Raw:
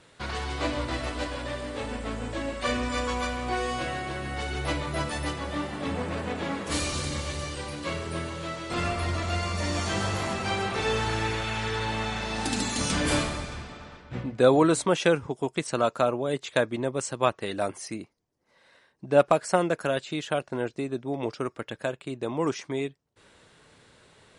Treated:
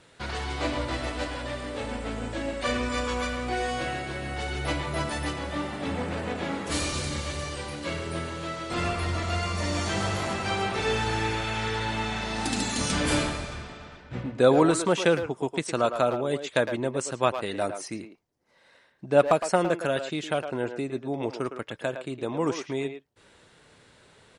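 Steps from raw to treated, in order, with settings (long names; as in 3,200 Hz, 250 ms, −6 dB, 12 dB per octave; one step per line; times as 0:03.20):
notch filter 1,100 Hz, Q 28
far-end echo of a speakerphone 110 ms, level −8 dB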